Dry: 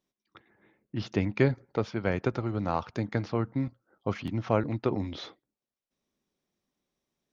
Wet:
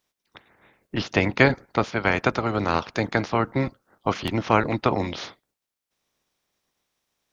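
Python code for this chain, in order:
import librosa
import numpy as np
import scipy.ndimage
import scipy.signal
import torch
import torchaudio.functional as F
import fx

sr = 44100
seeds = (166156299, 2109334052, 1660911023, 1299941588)

y = fx.spec_clip(x, sr, under_db=16)
y = y * 10.0 ** (6.5 / 20.0)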